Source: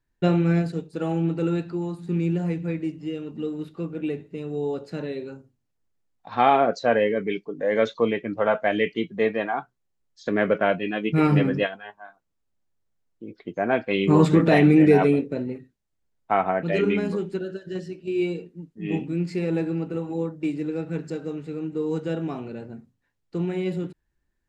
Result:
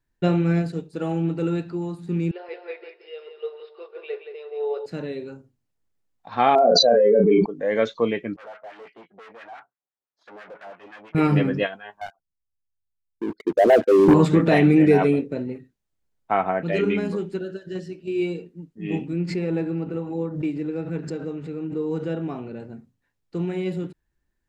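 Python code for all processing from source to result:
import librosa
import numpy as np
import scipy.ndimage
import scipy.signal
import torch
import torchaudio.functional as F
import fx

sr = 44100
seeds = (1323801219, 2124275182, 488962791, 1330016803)

y = fx.chain(x, sr, fx.brickwall_bandpass(low_hz=360.0, high_hz=5400.0),
    fx.echo_feedback(ms=175, feedback_pct=27, wet_db=-6.5),
    fx.band_widen(depth_pct=40), at=(2.31, 4.86))
y = fx.chain(y, sr, fx.spec_expand(power=2.2),
    fx.doubler(ms=34.0, db=-6),
    fx.env_flatten(amount_pct=100), at=(6.55, 7.46))
y = fx.chain(y, sr, fx.tube_stage(drive_db=35.0, bias=0.7),
    fx.filter_lfo_bandpass(shape='sine', hz=5.9, low_hz=650.0, high_hz=1700.0, q=1.4), at=(8.36, 11.15))
y = fx.chain(y, sr, fx.envelope_sharpen(power=3.0),
    fx.leveller(passes=3), at=(12.01, 14.14))
y = fx.chain(y, sr, fx.lowpass(hz=3100.0, slope=6),
    fx.pre_swell(db_per_s=80.0), at=(19.13, 22.6))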